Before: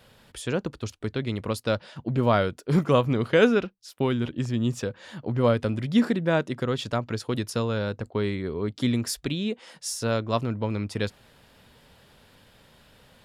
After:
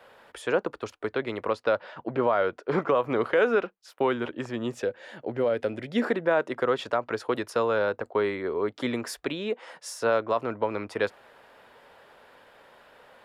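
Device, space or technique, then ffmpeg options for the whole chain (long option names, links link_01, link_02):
DJ mixer with the lows and highs turned down: -filter_complex "[0:a]acrossover=split=380 2100:gain=0.0794 1 0.178[link_01][link_02][link_03];[link_01][link_02][link_03]amix=inputs=3:normalize=0,alimiter=limit=-21dB:level=0:latency=1:release=109,asettb=1/sr,asplit=3[link_04][link_05][link_06];[link_04]atrim=end=1.524[link_07];[link_05]atrim=start=1.52:end=2.95,asetpts=PTS-STARTPTS,afade=type=in:duration=0.004:curve=qsin,afade=type=out:start_time=1.426:duration=0.004:curve=qsin,lowpass=5200[link_08];[link_06]atrim=start=2.946[link_09];[link_07][link_08]acrossfade=duration=0.004:curve1=hsin:curve2=qsin[link_10];[link_10][link_09]acrossfade=duration=0.004:curve1=qsin:curve2=hsin,asettb=1/sr,asplit=3[link_11][link_12][link_13];[link_11]atrim=end=4.724[link_14];[link_12]atrim=start=4.72:end=6.05,asetpts=PTS-STARTPTS,afade=type=in:duration=0.004:curve=qsin,afade=type=out:start_time=1.326:duration=0.004:curve=qsin,equalizer=frequency=1100:width_type=o:width=0.78:gain=-11.5[link_15];[link_13]atrim=start=6.046[link_16];[link_14][link_15]acrossfade=duration=0.004:curve1=hsin:curve2=qsin[link_17];[link_17][link_16]acrossfade=duration=0.004:curve1=qsin:curve2=hsin,volume=7.5dB"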